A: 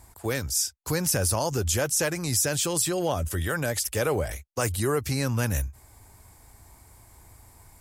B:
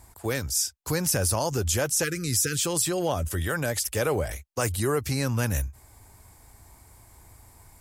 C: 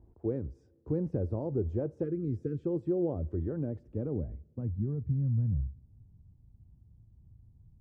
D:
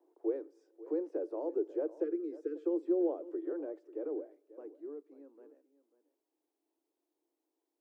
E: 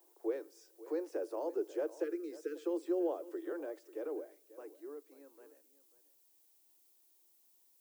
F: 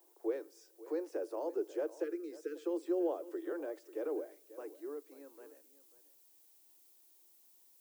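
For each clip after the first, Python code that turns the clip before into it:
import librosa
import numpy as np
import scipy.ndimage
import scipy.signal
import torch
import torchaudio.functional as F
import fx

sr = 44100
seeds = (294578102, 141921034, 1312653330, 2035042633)

y1 = fx.spec_erase(x, sr, start_s=2.04, length_s=0.6, low_hz=520.0, high_hz=1200.0)
y2 = fx.rev_double_slope(y1, sr, seeds[0], early_s=0.32, late_s=2.5, knee_db=-18, drr_db=17.5)
y2 = fx.filter_sweep_lowpass(y2, sr, from_hz=370.0, to_hz=160.0, start_s=3.35, end_s=5.26, q=2.0)
y2 = y2 * librosa.db_to_amplitude(-5.5)
y3 = scipy.signal.sosfilt(scipy.signal.butter(16, 300.0, 'highpass', fs=sr, output='sos'), y2)
y3 = y3 + 10.0 ** (-17.0 / 20.0) * np.pad(y3, (int(541 * sr / 1000.0), 0))[:len(y3)]
y4 = fx.tilt_eq(y3, sr, slope=5.5)
y4 = y4 * librosa.db_to_amplitude(4.5)
y5 = fx.rider(y4, sr, range_db=4, speed_s=2.0)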